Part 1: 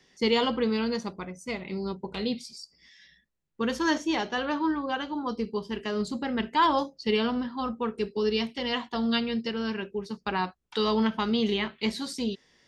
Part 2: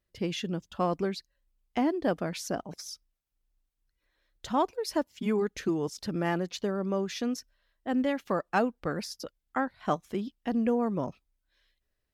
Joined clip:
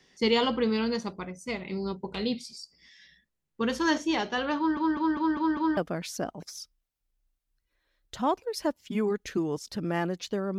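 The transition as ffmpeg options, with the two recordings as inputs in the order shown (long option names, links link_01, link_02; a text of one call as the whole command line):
ffmpeg -i cue0.wav -i cue1.wav -filter_complex "[0:a]apad=whole_dur=10.58,atrim=end=10.58,asplit=6[link_01][link_02][link_03][link_04][link_05][link_06];[link_01]atrim=end=4.772[link_07];[link_02]atrim=start=4.568:end=4.772[link_08];[link_03]atrim=start=4.568:end=4.772[link_09];[link_04]atrim=start=4.568:end=4.772[link_10];[link_05]atrim=start=4.568:end=4.772[link_11];[link_06]atrim=start=4.568:end=4.772[link_12];[1:a]atrim=start=2.078:end=6.89[link_13];[link_07][link_08]acrossfade=duration=0.004:curve1=hsin:curve2=hsin[link_14];[link_14][link_09]acrossfade=duration=0.004:curve1=hsin:curve2=hsin[link_15];[link_15][link_10]acrossfade=duration=0.004:curve1=hsin:curve2=hsin[link_16];[link_16][link_11]acrossfade=duration=0.004:curve1=hsin:curve2=hsin[link_17];[link_17][link_12]acrossfade=duration=0.004:curve1=hsin:curve2=hsin[link_18];[link_18][link_13]acrossfade=duration=0.004:curve1=hsin:curve2=hsin" out.wav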